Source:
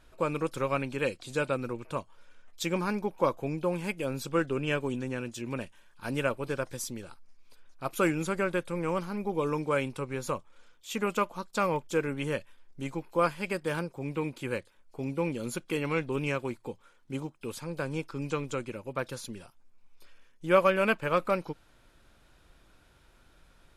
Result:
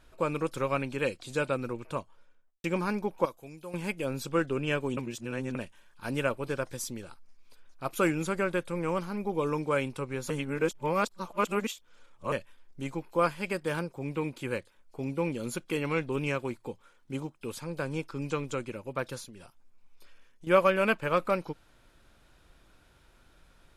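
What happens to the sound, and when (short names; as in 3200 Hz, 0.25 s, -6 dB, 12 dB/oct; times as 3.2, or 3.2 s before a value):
1.91–2.64 studio fade out
3.25–3.74 pre-emphasis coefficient 0.8
4.97–5.55 reverse
10.3–12.32 reverse
19.23–20.47 compressor, threshold -44 dBFS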